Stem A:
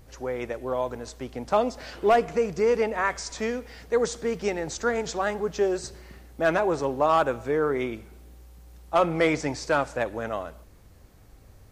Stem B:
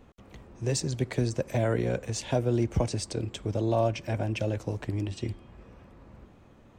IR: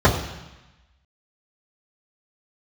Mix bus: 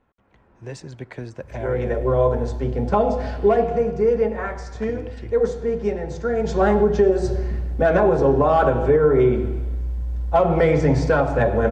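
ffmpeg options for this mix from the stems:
-filter_complex "[0:a]dynaudnorm=f=110:g=7:m=2.37,adelay=1400,volume=1.5,afade=t=out:st=3.22:d=0.6:silence=0.421697,afade=t=in:st=6.35:d=0.26:silence=0.316228,asplit=2[s0][s1];[s1]volume=0.119[s2];[1:a]equalizer=f=1300:t=o:w=1.6:g=11.5,dynaudnorm=f=120:g=7:m=2.37,volume=0.2,asplit=3[s3][s4][s5];[s3]atrim=end=1.91,asetpts=PTS-STARTPTS,afade=t=out:st=1.906:d=0.004:c=hsin[s6];[s4]atrim=start=1.91:end=4.75,asetpts=PTS-STARTPTS,volume=0[s7];[s5]atrim=start=4.75,asetpts=PTS-STARTPTS,afade=t=in:d=0.004:c=hsin[s8];[s6][s7][s8]concat=n=3:v=0:a=1[s9];[2:a]atrim=start_sample=2205[s10];[s2][s10]afir=irnorm=-1:irlink=0[s11];[s0][s9][s11]amix=inputs=3:normalize=0,lowpass=f=3000:p=1,bandreject=f=1200:w=7.2,alimiter=limit=0.422:level=0:latency=1:release=203"

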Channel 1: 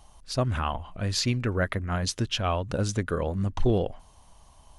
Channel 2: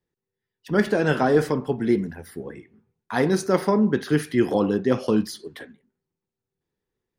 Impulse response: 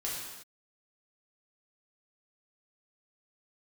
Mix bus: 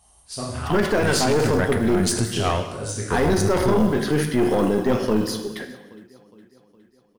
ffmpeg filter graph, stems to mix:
-filter_complex "[0:a]highpass=52,equalizer=f=9200:t=o:w=0.63:g=14.5,volume=1.19,asplit=2[s0][s1];[s1]volume=0.376[s2];[1:a]acrusher=bits=8:mode=log:mix=0:aa=0.000001,volume=1.12,asplit=4[s3][s4][s5][s6];[s4]volume=0.422[s7];[s5]volume=0.075[s8];[s6]apad=whole_len=211123[s9];[s0][s9]sidechaingate=range=0.0224:threshold=0.01:ratio=16:detection=peak[s10];[2:a]atrim=start_sample=2205[s11];[s2][s7]amix=inputs=2:normalize=0[s12];[s12][s11]afir=irnorm=-1:irlink=0[s13];[s8]aecho=0:1:413|826|1239|1652|2065|2478|2891|3304:1|0.56|0.314|0.176|0.0983|0.0551|0.0308|0.0173[s14];[s10][s3][s13][s14]amix=inputs=4:normalize=0,acontrast=51,aeval=exprs='(tanh(1.58*val(0)+0.75)-tanh(0.75))/1.58':c=same,alimiter=limit=0.299:level=0:latency=1:release=10"

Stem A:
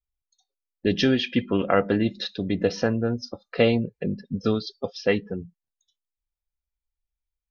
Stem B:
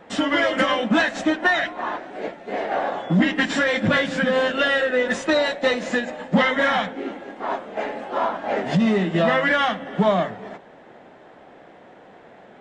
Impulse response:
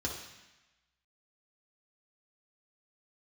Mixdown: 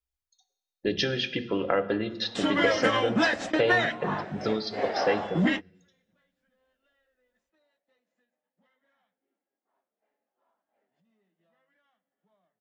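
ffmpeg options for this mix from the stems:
-filter_complex "[0:a]acompressor=threshold=0.0794:ratio=3,volume=0.841,asplit=3[s0][s1][s2];[s1]volume=0.316[s3];[1:a]adelay=2250,volume=0.596[s4];[s2]apad=whole_len=655220[s5];[s4][s5]sidechaingate=range=0.00355:threshold=0.002:ratio=16:detection=peak[s6];[2:a]atrim=start_sample=2205[s7];[s3][s7]afir=irnorm=-1:irlink=0[s8];[s0][s6][s8]amix=inputs=3:normalize=0,lowshelf=f=210:g=-3.5"

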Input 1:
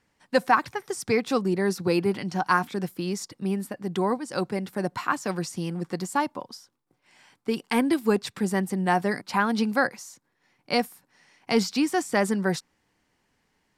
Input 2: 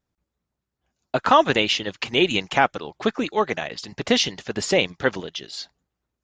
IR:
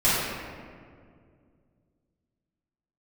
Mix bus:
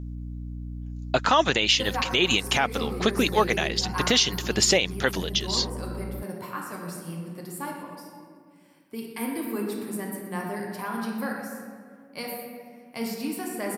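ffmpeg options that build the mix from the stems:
-filter_complex "[0:a]aexciter=amount=7.8:drive=4.7:freq=9400,highpass=55,adelay=1450,volume=0.224,asplit=3[s0][s1][s2];[s1]volume=0.188[s3];[s2]volume=0.2[s4];[1:a]highshelf=f=2900:g=11,aeval=exprs='val(0)+0.02*(sin(2*PI*60*n/s)+sin(2*PI*2*60*n/s)/2+sin(2*PI*3*60*n/s)/3+sin(2*PI*4*60*n/s)/4+sin(2*PI*5*60*n/s)/5)':c=same,volume=1.06[s5];[2:a]atrim=start_sample=2205[s6];[s3][s6]afir=irnorm=-1:irlink=0[s7];[s4]aecho=0:1:123|246|369|492|615|738|861:1|0.49|0.24|0.118|0.0576|0.0282|0.0138[s8];[s0][s5][s7][s8]amix=inputs=4:normalize=0,alimiter=limit=0.355:level=0:latency=1:release=127"

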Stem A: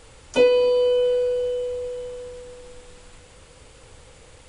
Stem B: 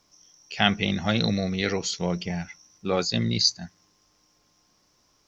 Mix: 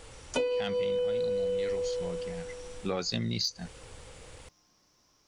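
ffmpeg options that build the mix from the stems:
-filter_complex "[0:a]volume=0.891[s0];[1:a]acontrast=74,volume=0.75,afade=t=out:st=0.71:d=0.38:silence=0.473151,afade=t=in:st=2.37:d=0.27:silence=0.281838,asplit=2[s1][s2];[s2]apad=whole_len=197842[s3];[s0][s3]sidechaincompress=threshold=0.0224:ratio=8:attack=47:release=213[s4];[s4][s1]amix=inputs=2:normalize=0,acompressor=threshold=0.0447:ratio=10"

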